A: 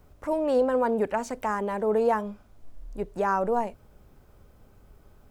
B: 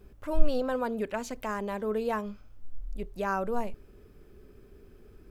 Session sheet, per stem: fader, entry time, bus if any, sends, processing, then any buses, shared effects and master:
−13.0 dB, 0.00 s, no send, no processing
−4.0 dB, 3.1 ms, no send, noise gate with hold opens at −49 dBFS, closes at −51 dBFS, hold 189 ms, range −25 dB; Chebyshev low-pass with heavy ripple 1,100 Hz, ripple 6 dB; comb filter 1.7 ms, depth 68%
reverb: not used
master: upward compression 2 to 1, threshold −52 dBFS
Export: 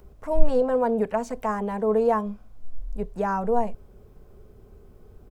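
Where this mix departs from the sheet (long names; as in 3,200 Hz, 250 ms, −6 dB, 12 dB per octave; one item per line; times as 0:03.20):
stem A −13.0 dB → −2.5 dB
stem B −4.0 dB → +5.5 dB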